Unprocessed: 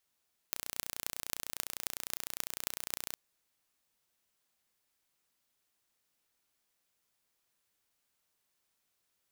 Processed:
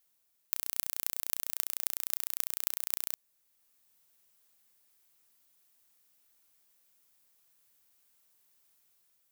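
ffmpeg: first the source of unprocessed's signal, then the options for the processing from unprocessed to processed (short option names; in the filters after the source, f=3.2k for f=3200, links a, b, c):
-f lavfi -i "aevalsrc='0.562*eq(mod(n,1475),0)*(0.5+0.5*eq(mod(n,11800),0))':d=2.61:s=44100"
-af "highshelf=f=9.2k:g=11.5,dynaudnorm=f=230:g=5:m=3dB"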